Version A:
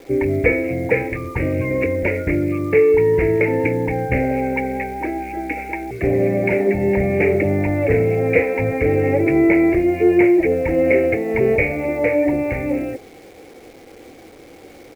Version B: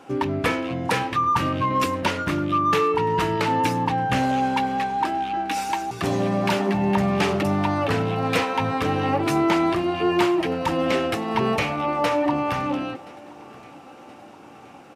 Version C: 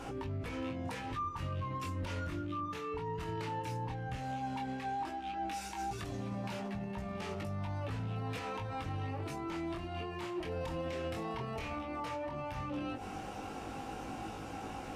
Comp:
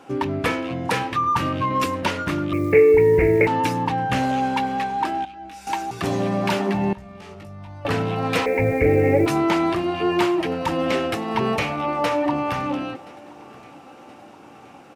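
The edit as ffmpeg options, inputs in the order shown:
-filter_complex "[0:a]asplit=2[a][b];[2:a]asplit=2[c][d];[1:a]asplit=5[e][f][g][h][i];[e]atrim=end=2.532[j];[a]atrim=start=2.528:end=3.472[k];[f]atrim=start=3.468:end=5.252[l];[c]atrim=start=5.248:end=5.672[m];[g]atrim=start=5.668:end=6.932[n];[d]atrim=start=6.928:end=7.852[o];[h]atrim=start=7.848:end=8.462[p];[b]atrim=start=8.458:end=9.262[q];[i]atrim=start=9.258[r];[j][k]acrossfade=d=0.004:c1=hsin:c2=hsin[s];[s][l]acrossfade=d=0.004:c1=hsin:c2=hsin[t];[t][m]acrossfade=d=0.004:c1=hsin:c2=hsin[u];[u][n]acrossfade=d=0.004:c1=hsin:c2=hsin[v];[v][o]acrossfade=d=0.004:c1=hsin:c2=hsin[w];[w][p]acrossfade=d=0.004:c1=hsin:c2=hsin[x];[x][q]acrossfade=d=0.004:c1=hsin:c2=hsin[y];[y][r]acrossfade=d=0.004:c1=hsin:c2=hsin"

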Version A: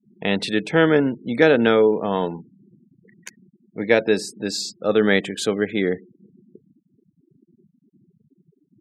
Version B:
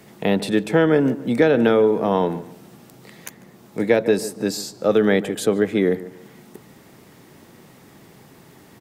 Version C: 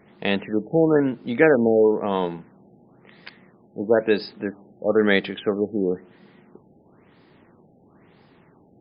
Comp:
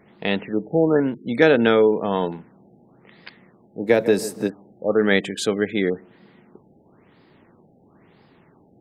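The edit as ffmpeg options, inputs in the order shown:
-filter_complex "[0:a]asplit=2[a][b];[2:a]asplit=4[c][d][e][f];[c]atrim=end=1.142[g];[a]atrim=start=1.138:end=2.322[h];[d]atrim=start=2.318:end=3.9[i];[1:a]atrim=start=3.86:end=4.5[j];[e]atrim=start=4.46:end=5.112[k];[b]atrim=start=5.108:end=5.902[l];[f]atrim=start=5.898[m];[g][h]acrossfade=d=0.004:c1=hsin:c2=hsin[n];[n][i]acrossfade=d=0.004:c1=hsin:c2=hsin[o];[o][j]acrossfade=d=0.04:c1=tri:c2=tri[p];[p][k]acrossfade=d=0.04:c1=tri:c2=tri[q];[q][l]acrossfade=d=0.004:c1=hsin:c2=hsin[r];[r][m]acrossfade=d=0.004:c1=hsin:c2=hsin"

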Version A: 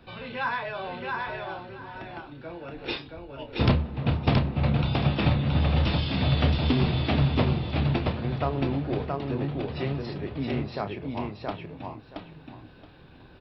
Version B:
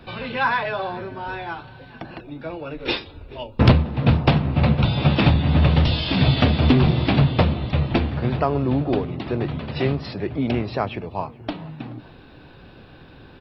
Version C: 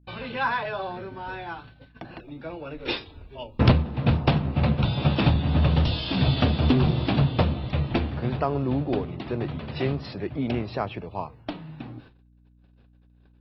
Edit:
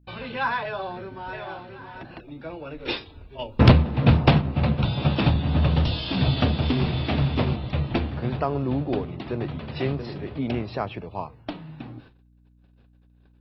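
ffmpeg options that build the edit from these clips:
-filter_complex "[0:a]asplit=3[a][b][c];[2:a]asplit=5[d][e][f][g][h];[d]atrim=end=1.332[i];[a]atrim=start=1.328:end=2.032[j];[e]atrim=start=2.028:end=3.392[k];[1:a]atrim=start=3.388:end=4.412[l];[f]atrim=start=4.408:end=6.622[m];[b]atrim=start=6.618:end=7.562[n];[g]atrim=start=7.558:end=9.992[o];[c]atrim=start=9.988:end=10.392[p];[h]atrim=start=10.388[q];[i][j]acrossfade=d=0.004:c1=hsin:c2=hsin[r];[r][k]acrossfade=d=0.004:c1=hsin:c2=hsin[s];[s][l]acrossfade=d=0.004:c1=hsin:c2=hsin[t];[t][m]acrossfade=d=0.004:c1=hsin:c2=hsin[u];[u][n]acrossfade=d=0.004:c1=hsin:c2=hsin[v];[v][o]acrossfade=d=0.004:c1=hsin:c2=hsin[w];[w][p]acrossfade=d=0.004:c1=hsin:c2=hsin[x];[x][q]acrossfade=d=0.004:c1=hsin:c2=hsin"

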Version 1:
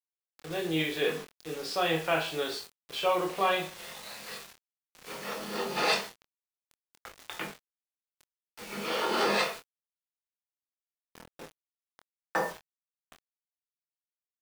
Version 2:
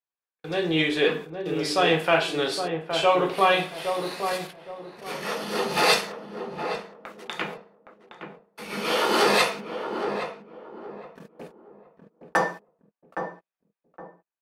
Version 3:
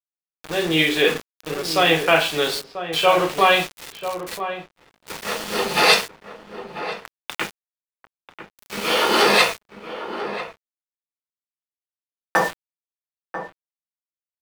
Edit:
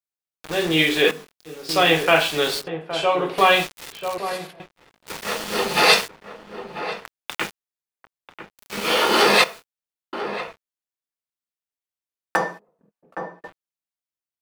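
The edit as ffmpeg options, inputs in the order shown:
-filter_complex "[0:a]asplit=2[a][b];[1:a]asplit=3[c][d][e];[2:a]asplit=6[f][g][h][i][j][k];[f]atrim=end=1.112[l];[a]atrim=start=1.108:end=1.692[m];[g]atrim=start=1.688:end=2.672[n];[c]atrim=start=2.668:end=3.382[o];[h]atrim=start=3.378:end=4.182[p];[d]atrim=start=4.178:end=4.602[q];[i]atrim=start=4.598:end=9.442[r];[b]atrim=start=9.438:end=10.132[s];[j]atrim=start=10.128:end=12.362[t];[e]atrim=start=12.358:end=13.442[u];[k]atrim=start=13.438[v];[l][m]acrossfade=d=0.004:c1=hsin:c2=hsin[w];[w][n]acrossfade=d=0.004:c1=hsin:c2=hsin[x];[x][o]acrossfade=d=0.004:c1=hsin:c2=hsin[y];[y][p]acrossfade=d=0.004:c1=hsin:c2=hsin[z];[z][q]acrossfade=d=0.004:c1=hsin:c2=hsin[aa];[aa][r]acrossfade=d=0.004:c1=hsin:c2=hsin[ab];[ab][s]acrossfade=d=0.004:c1=hsin:c2=hsin[ac];[ac][t]acrossfade=d=0.004:c1=hsin:c2=hsin[ad];[ad][u]acrossfade=d=0.004:c1=hsin:c2=hsin[ae];[ae][v]acrossfade=d=0.004:c1=hsin:c2=hsin"

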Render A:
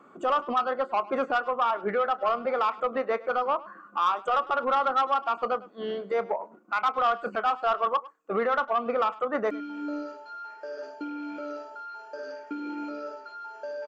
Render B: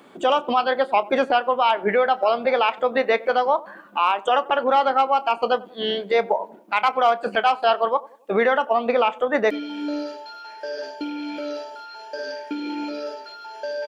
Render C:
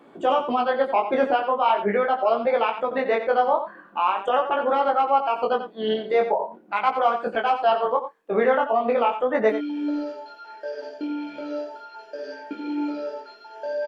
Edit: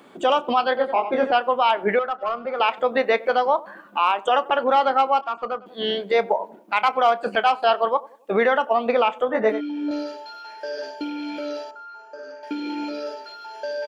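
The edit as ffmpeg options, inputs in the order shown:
-filter_complex "[2:a]asplit=2[a][b];[0:a]asplit=3[c][d][e];[1:a]asplit=6[f][g][h][i][j][k];[f]atrim=end=0.772[l];[a]atrim=start=0.768:end=1.322[m];[g]atrim=start=1.318:end=1.992[n];[c]atrim=start=1.988:end=2.602[o];[h]atrim=start=2.598:end=5.212[p];[d]atrim=start=5.208:end=5.662[q];[i]atrim=start=5.658:end=9.292[r];[b]atrim=start=9.288:end=9.912[s];[j]atrim=start=9.908:end=11.712[t];[e]atrim=start=11.708:end=12.432[u];[k]atrim=start=12.428[v];[l][m]acrossfade=d=0.004:c1=hsin:c2=hsin[w];[w][n]acrossfade=d=0.004:c1=hsin:c2=hsin[x];[x][o]acrossfade=d=0.004:c1=hsin:c2=hsin[y];[y][p]acrossfade=d=0.004:c1=hsin:c2=hsin[z];[z][q]acrossfade=d=0.004:c1=hsin:c2=hsin[aa];[aa][r]acrossfade=d=0.004:c1=hsin:c2=hsin[ab];[ab][s]acrossfade=d=0.004:c1=hsin:c2=hsin[ac];[ac][t]acrossfade=d=0.004:c1=hsin:c2=hsin[ad];[ad][u]acrossfade=d=0.004:c1=hsin:c2=hsin[ae];[ae][v]acrossfade=d=0.004:c1=hsin:c2=hsin"

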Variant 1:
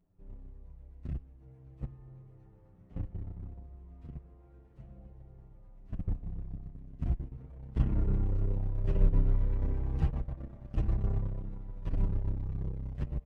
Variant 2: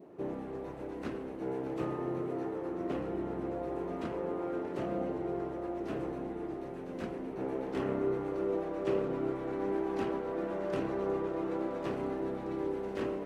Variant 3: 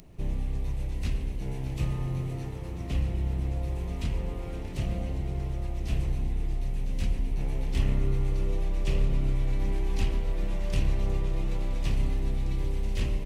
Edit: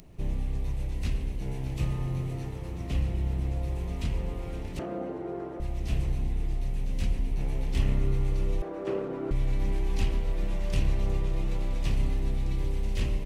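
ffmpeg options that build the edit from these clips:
-filter_complex "[1:a]asplit=2[a][b];[2:a]asplit=3[c][d][e];[c]atrim=end=4.792[f];[a]atrim=start=4.788:end=5.602[g];[d]atrim=start=5.598:end=8.622[h];[b]atrim=start=8.618:end=9.312[i];[e]atrim=start=9.308[j];[f][g]acrossfade=d=0.004:c1=hsin:c2=hsin[k];[k][h]acrossfade=d=0.004:c1=hsin:c2=hsin[l];[l][i]acrossfade=d=0.004:c1=hsin:c2=hsin[m];[m][j]acrossfade=d=0.004:c1=hsin:c2=hsin"

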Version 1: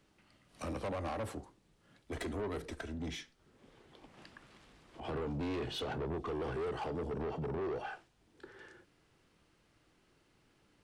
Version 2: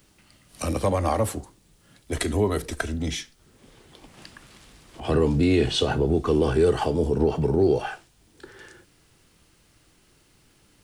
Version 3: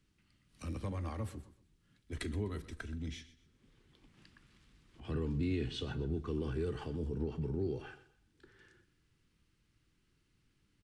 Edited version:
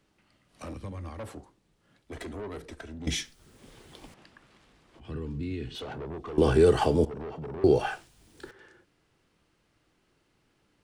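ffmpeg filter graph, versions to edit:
-filter_complex "[2:a]asplit=2[a][b];[1:a]asplit=3[c][d][e];[0:a]asplit=6[f][g][h][i][j][k];[f]atrim=end=0.742[l];[a]atrim=start=0.738:end=1.192[m];[g]atrim=start=1.188:end=3.072[n];[c]atrim=start=3.068:end=4.142[o];[h]atrim=start=4.138:end=4.992[p];[b]atrim=start=4.988:end=5.752[q];[i]atrim=start=5.748:end=6.382[r];[d]atrim=start=6.378:end=7.052[s];[j]atrim=start=7.048:end=7.642[t];[e]atrim=start=7.638:end=8.512[u];[k]atrim=start=8.508[v];[l][m]acrossfade=d=0.004:c1=hsin:c2=hsin[w];[w][n]acrossfade=d=0.004:c1=hsin:c2=hsin[x];[x][o]acrossfade=d=0.004:c1=hsin:c2=hsin[y];[y][p]acrossfade=d=0.004:c1=hsin:c2=hsin[z];[z][q]acrossfade=d=0.004:c1=hsin:c2=hsin[aa];[aa][r]acrossfade=d=0.004:c1=hsin:c2=hsin[ab];[ab][s]acrossfade=d=0.004:c1=hsin:c2=hsin[ac];[ac][t]acrossfade=d=0.004:c1=hsin:c2=hsin[ad];[ad][u]acrossfade=d=0.004:c1=hsin:c2=hsin[ae];[ae][v]acrossfade=d=0.004:c1=hsin:c2=hsin"

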